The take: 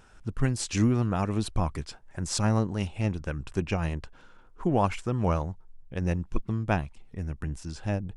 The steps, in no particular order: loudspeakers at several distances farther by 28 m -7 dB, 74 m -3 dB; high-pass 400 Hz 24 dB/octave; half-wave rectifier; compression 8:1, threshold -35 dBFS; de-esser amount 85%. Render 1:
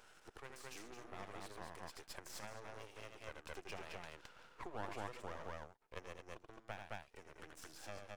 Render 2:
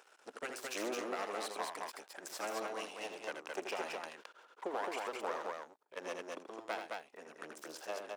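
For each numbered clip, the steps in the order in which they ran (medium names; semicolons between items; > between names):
de-esser > loudspeakers at several distances > compression > high-pass > half-wave rectifier; de-esser > half-wave rectifier > high-pass > compression > loudspeakers at several distances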